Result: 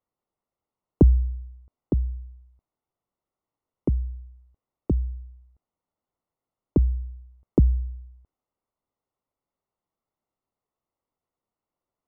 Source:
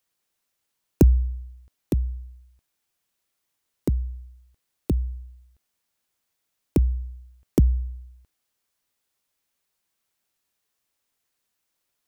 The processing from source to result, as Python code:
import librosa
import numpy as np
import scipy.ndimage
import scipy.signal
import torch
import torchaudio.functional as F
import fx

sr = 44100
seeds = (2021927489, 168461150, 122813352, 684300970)

y = scipy.signal.savgol_filter(x, 65, 4, mode='constant')